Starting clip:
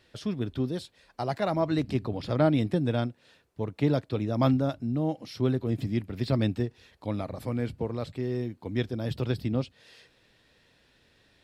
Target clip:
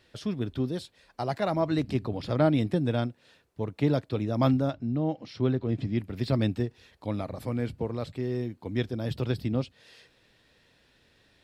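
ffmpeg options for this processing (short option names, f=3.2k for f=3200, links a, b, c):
-filter_complex "[0:a]asettb=1/sr,asplit=3[a][b][c];[a]atrim=end=4.704[d];[b]atrim=start=4.7:end=5.99,asetpts=PTS-STARTPTS,afade=t=in:d=0.004:c=qsin,afade=t=out:st=1.286:d=0.004:c=qsin,lowpass=4.5k[e];[c]atrim=start=5.986[f];[d][e]acrossfade=d=0.004:c1=hsin:c2=qsin[g];[g][f]acrossfade=d=0.004:c1=qsin:c2=hsin"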